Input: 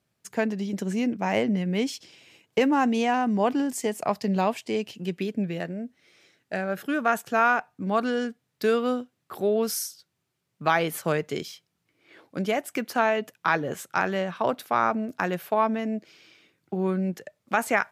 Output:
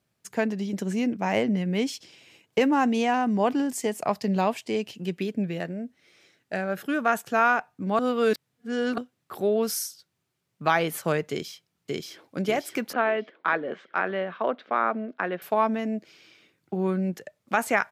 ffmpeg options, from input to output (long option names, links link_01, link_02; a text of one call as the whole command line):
ffmpeg -i in.wav -filter_complex "[0:a]asplit=2[link_01][link_02];[link_02]afade=type=in:start_time=11.3:duration=0.01,afade=type=out:start_time=12.37:duration=0.01,aecho=0:1:580|1160|1740|2320|2900|3480|4060:0.944061|0.47203|0.236015|0.118008|0.0590038|0.0295019|0.014751[link_03];[link_01][link_03]amix=inputs=2:normalize=0,asettb=1/sr,asplit=3[link_04][link_05][link_06];[link_04]atrim=end=12.934[link_07];[link_05]atrim=start=12.93:end=15.42,asetpts=PTS-STARTPTS,afade=type=in:duration=0.004:curve=qsin,afade=type=out:start_time=2.486:duration=0.004:curve=qsin,highpass=frequency=220:width=0.5412,highpass=frequency=220:width=1.3066,equalizer=frequency=290:width_type=q:width=4:gain=-4,equalizer=frequency=870:width_type=q:width=4:gain=-5,equalizer=frequency=2600:width_type=q:width=4:gain=-4,lowpass=frequency=3200:width=0.5412,lowpass=frequency=3200:width=1.3066[link_08];[link_06]atrim=start=15.416[link_09];[link_07][link_08]acrossfade=duration=0.004:curve1=hsin:curve2=qsin[link_10];[link_10][link_09]acrossfade=duration=0.004:curve1=qsin:curve2=hsin,asplit=3[link_11][link_12][link_13];[link_11]atrim=end=7.992[link_14];[link_12]atrim=start=7.988:end=8.982,asetpts=PTS-STARTPTS,areverse[link_15];[link_13]atrim=start=8.978[link_16];[link_14][link_15]acrossfade=duration=0.004:curve1=hsin:curve2=hsin[link_17];[link_17][link_16]acrossfade=duration=0.004:curve1=hsin:curve2=hsin" out.wav